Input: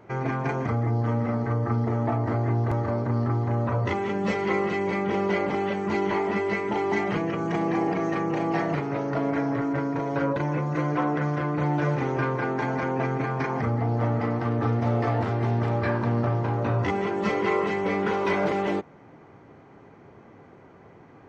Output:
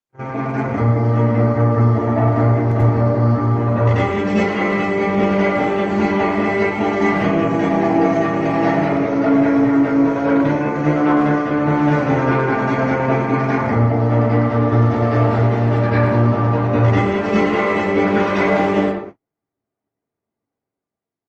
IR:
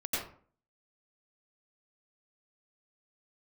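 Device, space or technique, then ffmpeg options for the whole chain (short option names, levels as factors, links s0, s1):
speakerphone in a meeting room: -filter_complex "[1:a]atrim=start_sample=2205[s0];[0:a][s0]afir=irnorm=-1:irlink=0,asplit=2[s1][s2];[s2]adelay=110,highpass=300,lowpass=3400,asoftclip=type=hard:threshold=0.188,volume=0.447[s3];[s1][s3]amix=inputs=2:normalize=0,dynaudnorm=f=110:g=13:m=2.11,agate=range=0.00562:threshold=0.0355:ratio=16:detection=peak,volume=0.841" -ar 48000 -c:a libopus -b:a 32k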